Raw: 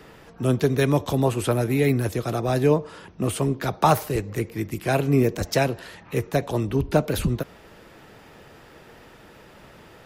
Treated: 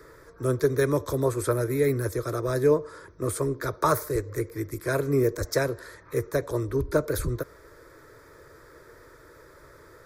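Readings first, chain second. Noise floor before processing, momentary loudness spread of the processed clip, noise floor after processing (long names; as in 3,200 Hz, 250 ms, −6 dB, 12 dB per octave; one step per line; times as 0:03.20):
−49 dBFS, 9 LU, −52 dBFS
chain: phaser with its sweep stopped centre 770 Hz, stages 6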